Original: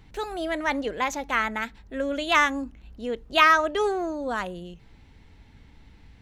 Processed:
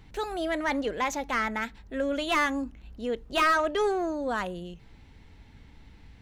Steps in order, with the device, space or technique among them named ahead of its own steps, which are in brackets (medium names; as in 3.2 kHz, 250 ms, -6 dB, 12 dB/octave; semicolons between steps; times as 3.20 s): saturation between pre-emphasis and de-emphasis (treble shelf 2.3 kHz +11 dB; saturation -16 dBFS, distortion -8 dB; treble shelf 2.3 kHz -11 dB)